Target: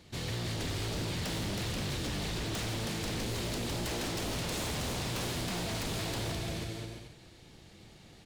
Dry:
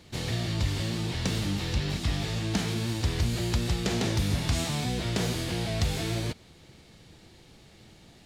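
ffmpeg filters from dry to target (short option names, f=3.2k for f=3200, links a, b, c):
-af "aecho=1:1:320|528|663.2|751.1|808.2:0.631|0.398|0.251|0.158|0.1,aeval=exprs='0.0473*(abs(mod(val(0)/0.0473+3,4)-2)-1)':c=same,volume=-3.5dB"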